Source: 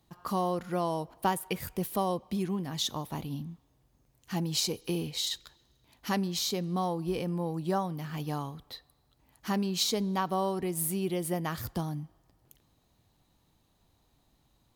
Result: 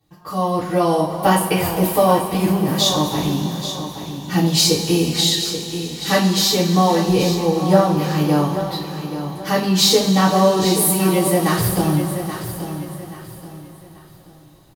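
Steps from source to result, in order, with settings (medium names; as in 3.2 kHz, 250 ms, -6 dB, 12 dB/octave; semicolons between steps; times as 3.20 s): level rider gain up to 11 dB; feedback delay 831 ms, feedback 31%, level -10.5 dB; two-slope reverb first 0.37 s, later 4.8 s, from -18 dB, DRR -8.5 dB; trim -4.5 dB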